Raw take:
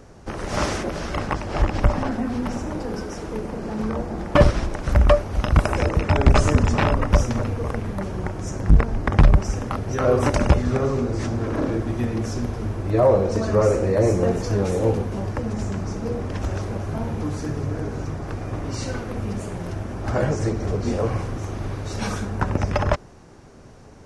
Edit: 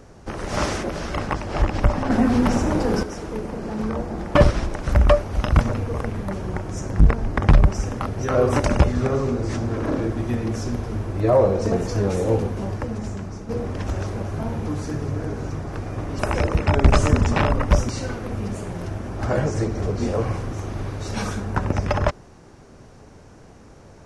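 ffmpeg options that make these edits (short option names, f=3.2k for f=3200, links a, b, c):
-filter_complex "[0:a]asplit=8[a][b][c][d][e][f][g][h];[a]atrim=end=2.102[i];[b]atrim=start=2.098:end=3.032,asetpts=PTS-STARTPTS,volume=7.5dB[j];[c]atrim=start=3.028:end=5.612[k];[d]atrim=start=7.308:end=13.422[l];[e]atrim=start=14.268:end=16.04,asetpts=PTS-STARTPTS,afade=t=out:st=0.942:d=0.83:silence=0.421697[m];[f]atrim=start=16.04:end=18.742,asetpts=PTS-STARTPTS,afade=t=in:d=0.004:c=hsin:silence=0.421697[n];[g]atrim=start=5.608:end=7.312[o];[h]atrim=start=18.738[p];[i][j]acrossfade=d=0.004:c1=hsin:c2=hsin[q];[q][k]acrossfade=d=0.004:c1=hsin:c2=hsin[r];[r][l]acrossfade=d=0.004:c1=hsin:c2=hsin[s];[m][n]concat=n=2:v=0:a=1[t];[s][t]acrossfade=d=0.004:c1=hsin:c2=hsin[u];[u][o]acrossfade=d=0.004:c1=hsin:c2=hsin[v];[v][p]acrossfade=d=0.004:c1=hsin:c2=hsin"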